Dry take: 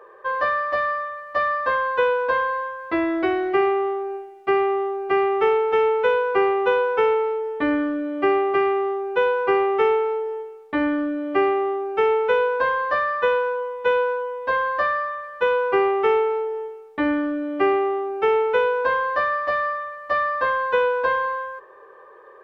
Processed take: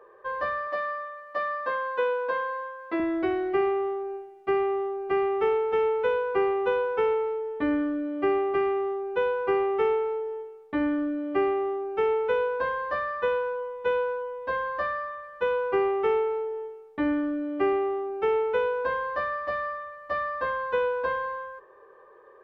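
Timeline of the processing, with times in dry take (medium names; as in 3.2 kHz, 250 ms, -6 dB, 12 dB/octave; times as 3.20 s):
0.67–3.00 s: high-pass 250 Hz
whole clip: bass shelf 390 Hz +8 dB; trim -8.5 dB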